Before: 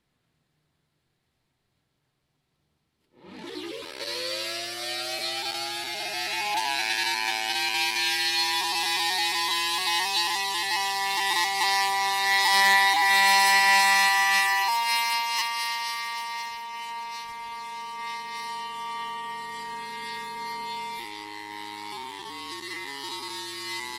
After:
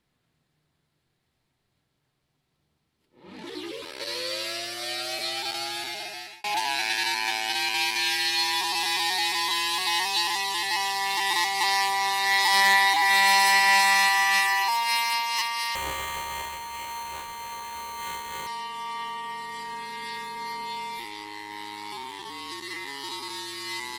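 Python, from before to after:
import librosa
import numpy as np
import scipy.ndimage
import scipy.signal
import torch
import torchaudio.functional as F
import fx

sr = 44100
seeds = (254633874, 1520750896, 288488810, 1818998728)

y = fx.sample_hold(x, sr, seeds[0], rate_hz=5200.0, jitter_pct=0, at=(15.75, 18.47))
y = fx.edit(y, sr, fx.fade_out_span(start_s=5.84, length_s=0.6), tone=tone)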